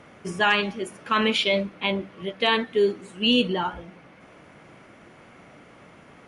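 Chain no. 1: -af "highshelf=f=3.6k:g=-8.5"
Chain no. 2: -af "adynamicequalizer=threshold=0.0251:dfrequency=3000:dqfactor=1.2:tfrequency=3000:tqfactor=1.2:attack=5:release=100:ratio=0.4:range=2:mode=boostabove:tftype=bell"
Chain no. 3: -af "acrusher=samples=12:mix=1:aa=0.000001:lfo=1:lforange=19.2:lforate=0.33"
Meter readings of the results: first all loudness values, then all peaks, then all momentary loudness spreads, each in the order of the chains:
-25.0, -21.5, -24.5 LUFS; -11.0, -7.5, -10.5 dBFS; 11, 12, 10 LU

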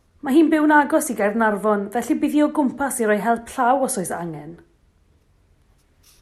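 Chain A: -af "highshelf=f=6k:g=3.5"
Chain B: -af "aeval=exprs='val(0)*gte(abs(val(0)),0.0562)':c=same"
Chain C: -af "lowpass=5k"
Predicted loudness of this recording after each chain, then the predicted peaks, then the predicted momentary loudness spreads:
-19.5, -19.5, -19.5 LUFS; -5.0, -5.0, -5.0 dBFS; 8, 8, 11 LU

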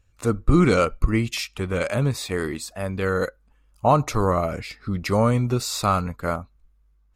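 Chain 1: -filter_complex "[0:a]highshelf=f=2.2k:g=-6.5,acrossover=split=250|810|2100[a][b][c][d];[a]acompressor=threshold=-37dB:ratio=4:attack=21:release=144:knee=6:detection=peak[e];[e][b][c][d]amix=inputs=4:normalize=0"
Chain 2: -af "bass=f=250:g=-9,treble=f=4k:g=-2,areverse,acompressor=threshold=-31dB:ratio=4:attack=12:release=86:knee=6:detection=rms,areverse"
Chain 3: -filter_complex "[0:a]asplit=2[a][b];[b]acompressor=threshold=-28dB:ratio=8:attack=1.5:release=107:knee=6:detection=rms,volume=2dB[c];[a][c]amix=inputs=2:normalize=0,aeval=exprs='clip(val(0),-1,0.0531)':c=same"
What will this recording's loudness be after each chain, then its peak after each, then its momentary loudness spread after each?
-26.5, -34.0, -23.5 LUFS; -5.5, -19.5, -4.5 dBFS; 10, 5, 7 LU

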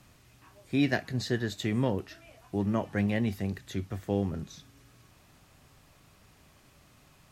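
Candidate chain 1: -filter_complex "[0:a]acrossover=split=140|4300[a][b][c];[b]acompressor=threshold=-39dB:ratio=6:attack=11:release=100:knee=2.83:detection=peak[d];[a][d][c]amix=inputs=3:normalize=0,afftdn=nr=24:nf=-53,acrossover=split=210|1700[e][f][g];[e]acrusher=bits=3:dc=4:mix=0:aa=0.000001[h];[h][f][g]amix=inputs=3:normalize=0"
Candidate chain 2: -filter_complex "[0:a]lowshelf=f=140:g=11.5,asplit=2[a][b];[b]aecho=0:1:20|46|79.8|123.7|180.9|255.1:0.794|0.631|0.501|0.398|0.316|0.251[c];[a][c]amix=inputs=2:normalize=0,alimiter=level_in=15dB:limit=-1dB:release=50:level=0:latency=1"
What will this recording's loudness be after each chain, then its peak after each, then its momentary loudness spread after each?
-38.0, -11.5 LUFS; -22.5, -1.0 dBFS; 9, 9 LU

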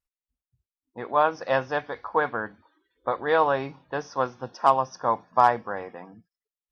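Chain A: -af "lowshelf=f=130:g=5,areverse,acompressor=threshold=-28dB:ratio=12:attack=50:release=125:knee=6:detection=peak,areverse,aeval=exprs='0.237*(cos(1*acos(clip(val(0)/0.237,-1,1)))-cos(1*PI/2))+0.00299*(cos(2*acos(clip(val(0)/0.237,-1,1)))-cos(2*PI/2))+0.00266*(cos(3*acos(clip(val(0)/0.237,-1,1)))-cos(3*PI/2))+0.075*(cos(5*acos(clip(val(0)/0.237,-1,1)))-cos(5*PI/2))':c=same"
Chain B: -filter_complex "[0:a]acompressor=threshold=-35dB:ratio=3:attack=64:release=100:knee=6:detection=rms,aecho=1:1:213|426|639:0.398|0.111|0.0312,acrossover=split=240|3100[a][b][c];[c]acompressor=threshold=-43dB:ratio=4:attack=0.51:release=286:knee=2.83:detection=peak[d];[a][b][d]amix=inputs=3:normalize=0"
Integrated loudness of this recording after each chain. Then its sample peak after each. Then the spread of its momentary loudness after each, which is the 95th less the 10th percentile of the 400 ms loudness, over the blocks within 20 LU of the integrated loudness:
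-25.5, -34.5 LUFS; -13.0, -14.5 dBFS; 10, 11 LU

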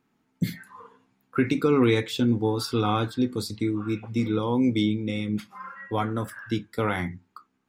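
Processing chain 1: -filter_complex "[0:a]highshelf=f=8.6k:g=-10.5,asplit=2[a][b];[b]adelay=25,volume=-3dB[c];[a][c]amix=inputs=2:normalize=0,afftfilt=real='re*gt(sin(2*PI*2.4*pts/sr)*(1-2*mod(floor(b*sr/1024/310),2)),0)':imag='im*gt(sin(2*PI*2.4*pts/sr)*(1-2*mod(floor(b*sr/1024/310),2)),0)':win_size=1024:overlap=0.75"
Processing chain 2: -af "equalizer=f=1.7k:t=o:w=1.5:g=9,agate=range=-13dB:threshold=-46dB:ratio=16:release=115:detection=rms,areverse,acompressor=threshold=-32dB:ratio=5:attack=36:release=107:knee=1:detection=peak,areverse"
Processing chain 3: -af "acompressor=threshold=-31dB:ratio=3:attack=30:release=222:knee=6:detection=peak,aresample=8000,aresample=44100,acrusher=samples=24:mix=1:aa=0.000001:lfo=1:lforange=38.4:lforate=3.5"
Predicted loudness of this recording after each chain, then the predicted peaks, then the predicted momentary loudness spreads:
-28.0, -32.0, -33.0 LUFS; -10.5, -15.5, -15.0 dBFS; 15, 6, 11 LU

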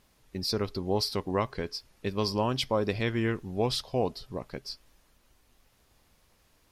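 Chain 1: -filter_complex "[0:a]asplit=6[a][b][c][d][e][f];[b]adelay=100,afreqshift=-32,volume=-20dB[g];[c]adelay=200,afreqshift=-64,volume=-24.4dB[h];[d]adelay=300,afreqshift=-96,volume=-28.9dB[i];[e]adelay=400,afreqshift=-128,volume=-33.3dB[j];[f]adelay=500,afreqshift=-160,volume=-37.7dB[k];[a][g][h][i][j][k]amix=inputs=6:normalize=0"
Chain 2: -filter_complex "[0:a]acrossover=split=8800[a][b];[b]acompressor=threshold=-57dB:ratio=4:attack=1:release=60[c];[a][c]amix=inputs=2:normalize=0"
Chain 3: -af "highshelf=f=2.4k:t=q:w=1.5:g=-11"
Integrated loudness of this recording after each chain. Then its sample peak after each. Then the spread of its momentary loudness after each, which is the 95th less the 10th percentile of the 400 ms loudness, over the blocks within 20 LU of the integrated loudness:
-31.0, -31.0, -31.5 LUFS; -14.0, -14.0, -14.0 dBFS; 11, 12, 11 LU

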